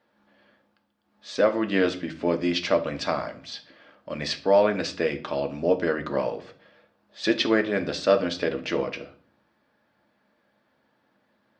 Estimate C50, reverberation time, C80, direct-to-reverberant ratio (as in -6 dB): 15.0 dB, 0.50 s, 19.5 dB, 5.0 dB